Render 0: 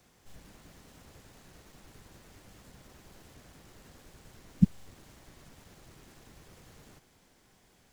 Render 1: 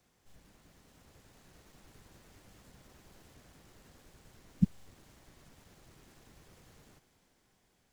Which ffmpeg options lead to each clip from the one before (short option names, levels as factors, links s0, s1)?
-af "dynaudnorm=f=270:g=9:m=1.58,volume=0.398"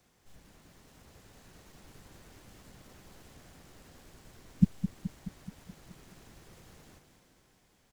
-af "aecho=1:1:213|426|639|852|1065|1278|1491:0.316|0.19|0.114|0.0683|0.041|0.0246|0.0148,volume=1.5"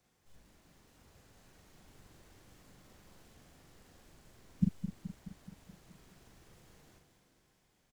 -filter_complex "[0:a]asplit=2[s0][s1];[s1]adelay=42,volume=0.596[s2];[s0][s2]amix=inputs=2:normalize=0,volume=0.447"